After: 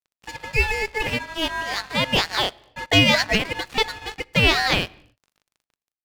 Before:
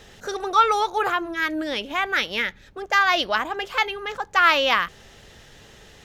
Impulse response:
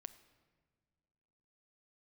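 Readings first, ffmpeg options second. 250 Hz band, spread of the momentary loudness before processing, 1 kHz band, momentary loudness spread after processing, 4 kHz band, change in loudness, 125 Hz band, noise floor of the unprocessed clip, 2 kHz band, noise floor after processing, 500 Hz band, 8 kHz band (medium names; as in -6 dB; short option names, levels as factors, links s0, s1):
+5.5 dB, 11 LU, -6.5 dB, 11 LU, +5.0 dB, +1.0 dB, no reading, -49 dBFS, 0.0 dB, under -85 dBFS, 0.0 dB, +5.5 dB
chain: -filter_complex "[0:a]dynaudnorm=f=420:g=5:m=3.76,aeval=exprs='val(0)*sin(2*PI*1300*n/s)':c=same,aeval=exprs='val(0)+0.00891*(sin(2*PI*50*n/s)+sin(2*PI*2*50*n/s)/2+sin(2*PI*3*50*n/s)/3+sin(2*PI*4*50*n/s)/4+sin(2*PI*5*50*n/s)/5)':c=same,aeval=exprs='sgn(val(0))*max(abs(val(0))-0.0211,0)':c=same,asplit=2[s0][s1];[1:a]atrim=start_sample=2205,afade=t=out:st=0.35:d=0.01,atrim=end_sample=15876[s2];[s1][s2]afir=irnorm=-1:irlink=0,volume=0.891[s3];[s0][s3]amix=inputs=2:normalize=0,volume=0.708"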